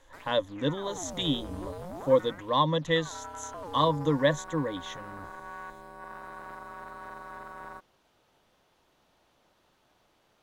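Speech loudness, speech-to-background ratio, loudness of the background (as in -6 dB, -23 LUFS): -28.5 LUFS, 14.5 dB, -43.0 LUFS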